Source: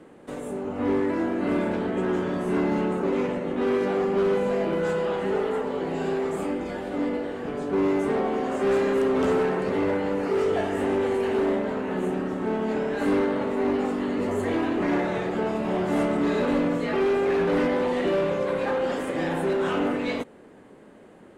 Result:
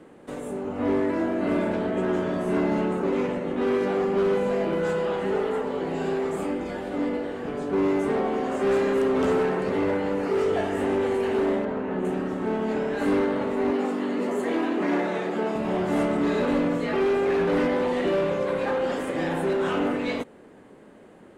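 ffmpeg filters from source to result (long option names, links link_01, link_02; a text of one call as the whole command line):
ffmpeg -i in.wav -filter_complex "[0:a]asettb=1/sr,asplit=3[link_01][link_02][link_03];[link_01]atrim=end=0.824[link_04];[link_02]atrim=start=0.82:end=2.82,asetpts=PTS-STARTPTS,afade=type=in:duration=0.004:curve=qsin,afade=type=out:start_time=1.996:duration=0.004:curve=qsin,aeval=exprs='val(0)+0.0224*sin(2*PI*640*n/s)':channel_layout=same[link_05];[link_03]atrim=start=2.816[link_06];[link_04][link_05]acrossfade=duration=0.004:curve1=hsin:curve2=qsin[link_07];[link_07][link_06]acrossfade=duration=0.004:curve1=qsin:curve2=hsin,asettb=1/sr,asplit=3[link_08][link_09][link_10];[link_08]atrim=end=11.654[link_11];[link_09]atrim=start=11.65:end=12.05,asetpts=PTS-STARTPTS,afade=type=in:duration=0.004:curve=qsin,afade=type=out:start_time=0.396:duration=0.004:curve=qsin,lowpass=frequency=1900:poles=1[link_12];[link_10]atrim=start=12.046[link_13];[link_11][link_12]acrossfade=duration=0.004:curve1=hsin:curve2=qsin[link_14];[link_14][link_13]acrossfade=duration=0.004:curve1=qsin:curve2=hsin,asettb=1/sr,asplit=3[link_15][link_16][link_17];[link_15]atrim=end=13.714[link_18];[link_16]atrim=start=13.71:end=15.56,asetpts=PTS-STARTPTS,afade=type=in:duration=0.004:curve=qsin,afade=type=out:start_time=1.846:duration=0.004:curve=qsin,highpass=frequency=180:width=0.5412,highpass=frequency=180:width=1.3066[link_19];[link_17]atrim=start=15.556[link_20];[link_18][link_19]acrossfade=duration=0.004:curve1=hsin:curve2=qsin[link_21];[link_21][link_20]acrossfade=duration=0.004:curve1=qsin:curve2=hsin" out.wav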